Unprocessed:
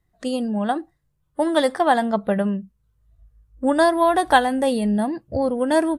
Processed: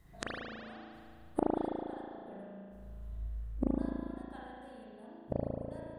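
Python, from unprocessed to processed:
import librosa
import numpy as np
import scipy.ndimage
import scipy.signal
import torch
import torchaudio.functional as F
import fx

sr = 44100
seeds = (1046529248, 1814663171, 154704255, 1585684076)

y = fx.rider(x, sr, range_db=4, speed_s=0.5)
y = fx.gate_flip(y, sr, shuts_db=-23.0, range_db=-41)
y = fx.rev_spring(y, sr, rt60_s=2.2, pass_ms=(36,), chirp_ms=40, drr_db=-6.5)
y = y * 10.0 ** (4.0 / 20.0)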